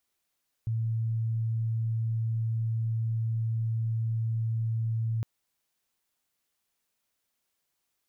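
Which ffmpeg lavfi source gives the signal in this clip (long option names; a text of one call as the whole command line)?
ffmpeg -f lavfi -i "aevalsrc='0.0501*sin(2*PI*113*t)':duration=4.56:sample_rate=44100" out.wav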